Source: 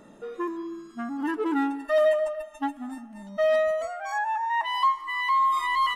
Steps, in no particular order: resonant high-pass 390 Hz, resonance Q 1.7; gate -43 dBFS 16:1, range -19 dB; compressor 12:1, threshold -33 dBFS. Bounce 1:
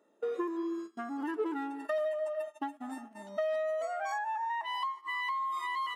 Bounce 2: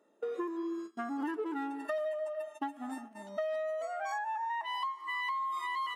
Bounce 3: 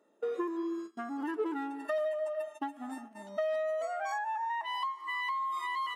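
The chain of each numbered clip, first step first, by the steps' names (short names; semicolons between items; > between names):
compressor > gate > resonant high-pass; gate > resonant high-pass > compressor; gate > compressor > resonant high-pass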